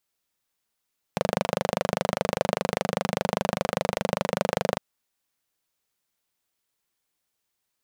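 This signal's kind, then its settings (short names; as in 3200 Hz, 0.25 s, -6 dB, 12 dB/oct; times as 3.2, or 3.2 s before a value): single-cylinder engine model, steady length 3.61 s, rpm 3000, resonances 190/530 Hz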